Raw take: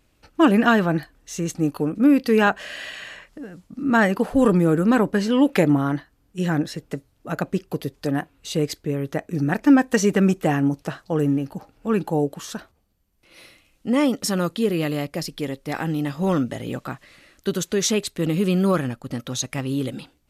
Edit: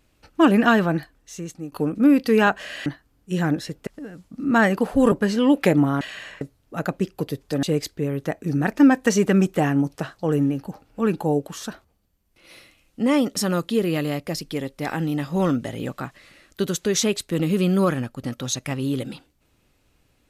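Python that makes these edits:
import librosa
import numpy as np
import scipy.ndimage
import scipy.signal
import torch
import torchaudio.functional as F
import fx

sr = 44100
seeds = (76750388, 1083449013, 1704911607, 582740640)

y = fx.edit(x, sr, fx.fade_out_to(start_s=0.83, length_s=0.89, floor_db=-15.0),
    fx.swap(start_s=2.86, length_s=0.4, other_s=5.93, other_length_s=1.01),
    fx.cut(start_s=4.51, length_s=0.53),
    fx.cut(start_s=8.16, length_s=0.34), tone=tone)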